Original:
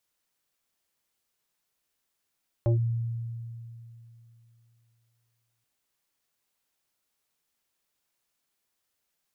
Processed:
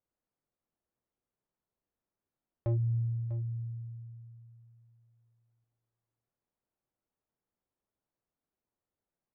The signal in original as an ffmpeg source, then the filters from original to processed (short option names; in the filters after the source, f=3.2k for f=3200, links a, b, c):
-f lavfi -i "aevalsrc='0.1*pow(10,-3*t/2.98)*sin(2*PI*116*t+1.9*clip(1-t/0.12,0,1)*sin(2*PI*2.01*116*t))':d=2.98:s=44100"
-af "alimiter=level_in=2dB:limit=-24dB:level=0:latency=1,volume=-2dB,adynamicsmooth=sensitivity=5.5:basefreq=890,aecho=1:1:647:0.211"